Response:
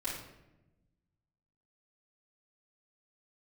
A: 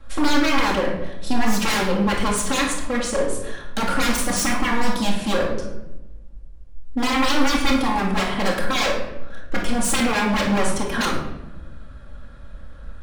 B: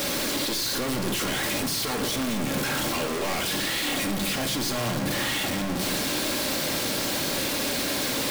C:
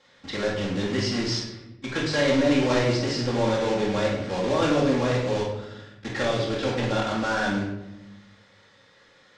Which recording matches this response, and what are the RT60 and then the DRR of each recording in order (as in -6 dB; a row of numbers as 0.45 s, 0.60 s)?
C; 1.0 s, 1.0 s, 1.0 s; -3.5 dB, 4.0 dB, -10.0 dB